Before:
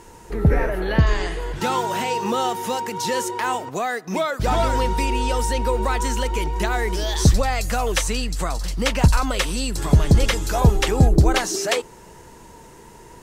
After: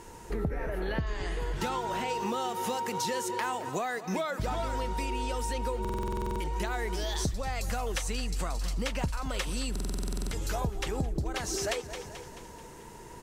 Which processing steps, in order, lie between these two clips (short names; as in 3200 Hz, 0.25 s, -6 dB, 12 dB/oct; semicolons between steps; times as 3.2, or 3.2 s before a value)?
feedback echo 0.217 s, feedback 52%, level -17 dB; compressor 10:1, threshold -25 dBFS, peak gain reduction 16.5 dB; 1.68–2.08 high shelf 10000 Hz -> 5200 Hz -7.5 dB; stuck buffer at 5.8/9.71, samples 2048, times 12; gain -3 dB